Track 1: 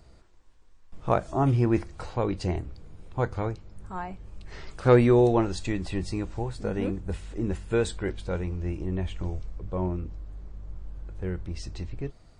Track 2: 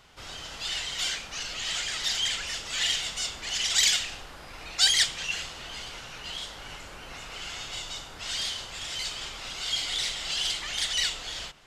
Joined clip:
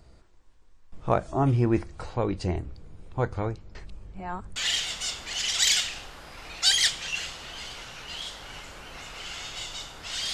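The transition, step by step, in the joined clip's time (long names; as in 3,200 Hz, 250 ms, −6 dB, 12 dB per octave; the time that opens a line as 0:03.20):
track 1
0:03.75–0:04.56: reverse
0:04.56: continue with track 2 from 0:02.72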